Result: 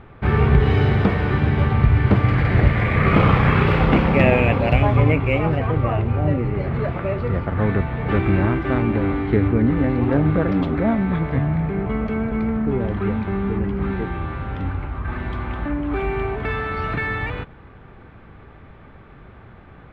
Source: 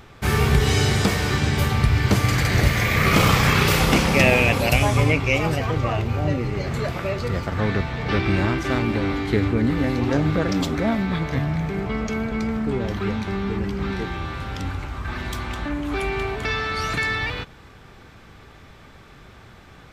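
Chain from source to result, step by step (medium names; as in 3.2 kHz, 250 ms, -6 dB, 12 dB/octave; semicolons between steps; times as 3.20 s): treble shelf 10 kHz -9 dB; in parallel at -6 dB: sample-rate reducer 9.9 kHz, jitter 0%; on the sum: distance through air 480 m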